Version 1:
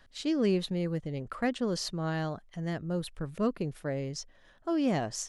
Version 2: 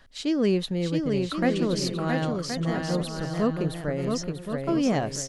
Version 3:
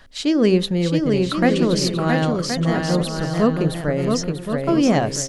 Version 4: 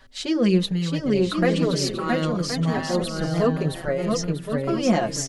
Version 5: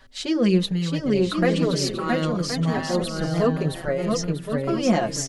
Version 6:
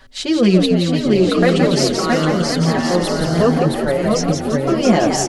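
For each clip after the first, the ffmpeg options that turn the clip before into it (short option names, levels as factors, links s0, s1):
-af "aecho=1:1:670|1072|1313|1458|1545:0.631|0.398|0.251|0.158|0.1,volume=1.58"
-af "bandreject=f=65.54:t=h:w=4,bandreject=f=131.08:t=h:w=4,bandreject=f=196.62:t=h:w=4,bandreject=f=262.16:t=h:w=4,bandreject=f=327.7:t=h:w=4,bandreject=f=393.24:t=h:w=4,bandreject=f=458.78:t=h:w=4,bandreject=f=524.32:t=h:w=4,bandreject=f=589.86:t=h:w=4,volume=2.37"
-filter_complex "[0:a]asplit=2[s0][s1];[s1]adelay=4.7,afreqshift=-1.1[s2];[s0][s2]amix=inputs=2:normalize=1"
-af anull
-filter_complex "[0:a]asplit=6[s0][s1][s2][s3][s4][s5];[s1]adelay=171,afreqshift=73,volume=0.531[s6];[s2]adelay=342,afreqshift=146,volume=0.24[s7];[s3]adelay=513,afreqshift=219,volume=0.107[s8];[s4]adelay=684,afreqshift=292,volume=0.0484[s9];[s5]adelay=855,afreqshift=365,volume=0.0219[s10];[s0][s6][s7][s8][s9][s10]amix=inputs=6:normalize=0,volume=2"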